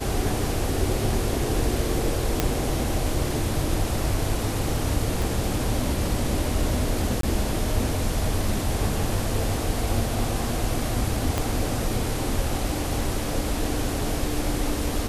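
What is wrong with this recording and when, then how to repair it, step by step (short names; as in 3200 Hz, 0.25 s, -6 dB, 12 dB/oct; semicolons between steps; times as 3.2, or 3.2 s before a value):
2.4 pop -5 dBFS
5.22 pop
7.21–7.23 gap 23 ms
11.38 pop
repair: de-click; interpolate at 7.21, 23 ms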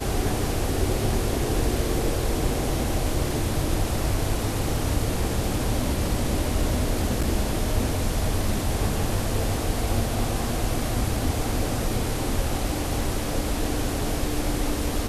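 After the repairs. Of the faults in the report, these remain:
5.22 pop
11.38 pop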